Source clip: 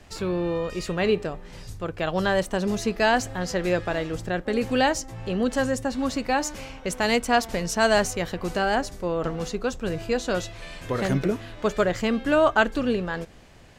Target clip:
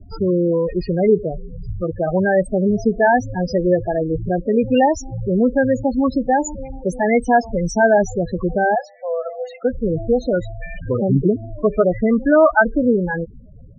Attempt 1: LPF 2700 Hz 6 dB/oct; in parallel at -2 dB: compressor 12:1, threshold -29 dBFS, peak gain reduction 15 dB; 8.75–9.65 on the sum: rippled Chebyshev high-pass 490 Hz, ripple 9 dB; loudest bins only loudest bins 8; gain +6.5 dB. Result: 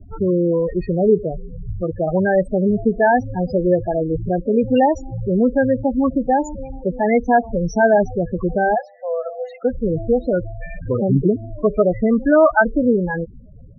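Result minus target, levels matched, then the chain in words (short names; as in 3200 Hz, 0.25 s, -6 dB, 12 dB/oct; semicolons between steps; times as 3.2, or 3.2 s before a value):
8000 Hz band -9.5 dB
LPF 8600 Hz 6 dB/oct; in parallel at -2 dB: compressor 12:1, threshold -29 dBFS, peak gain reduction 15.5 dB; 8.75–9.65 on the sum: rippled Chebyshev high-pass 490 Hz, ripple 9 dB; loudest bins only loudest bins 8; gain +6.5 dB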